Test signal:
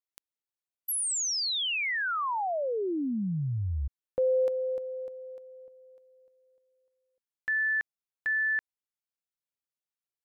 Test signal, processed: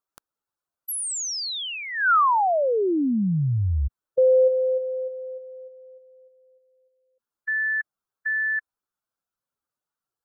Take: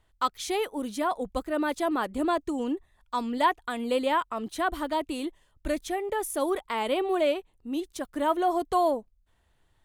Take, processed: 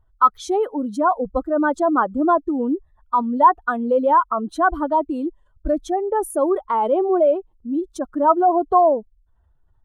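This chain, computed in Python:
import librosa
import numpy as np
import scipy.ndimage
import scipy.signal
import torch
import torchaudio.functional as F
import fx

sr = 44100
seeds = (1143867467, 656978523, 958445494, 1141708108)

y = fx.spec_expand(x, sr, power=1.7)
y = fx.high_shelf_res(y, sr, hz=1700.0, db=-6.5, q=3.0)
y = F.gain(torch.from_numpy(y), 8.0).numpy()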